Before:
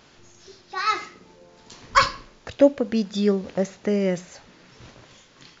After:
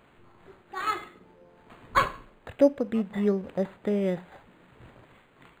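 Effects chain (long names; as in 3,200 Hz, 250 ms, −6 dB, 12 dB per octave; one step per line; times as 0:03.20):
linearly interpolated sample-rate reduction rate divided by 8×
level −4 dB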